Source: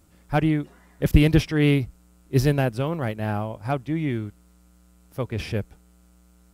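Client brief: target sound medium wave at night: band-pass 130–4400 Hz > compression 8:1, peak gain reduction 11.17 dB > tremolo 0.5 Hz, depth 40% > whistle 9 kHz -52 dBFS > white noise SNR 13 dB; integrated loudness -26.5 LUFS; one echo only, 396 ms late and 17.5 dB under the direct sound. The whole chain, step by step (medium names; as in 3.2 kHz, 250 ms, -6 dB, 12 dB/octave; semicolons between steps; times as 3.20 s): band-pass 130–4400 Hz; delay 396 ms -17.5 dB; compression 8:1, threshold -24 dBFS; tremolo 0.5 Hz, depth 40%; whistle 9 kHz -52 dBFS; white noise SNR 13 dB; trim +7.5 dB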